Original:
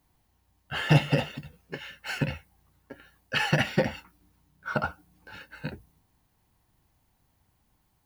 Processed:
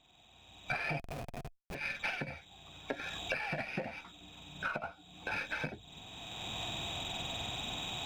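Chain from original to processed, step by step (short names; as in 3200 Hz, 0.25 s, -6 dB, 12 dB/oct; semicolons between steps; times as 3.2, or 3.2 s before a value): nonlinear frequency compression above 2200 Hz 4:1; recorder AGC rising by 23 dB/s; HPF 140 Hz 6 dB/oct; compressor 8:1, threshold -36 dBFS, peak gain reduction 19 dB; 0.99–1.75 Schmitt trigger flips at -39.5 dBFS; small resonant body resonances 690/2500 Hz, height 11 dB, ringing for 30 ms; running maximum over 3 samples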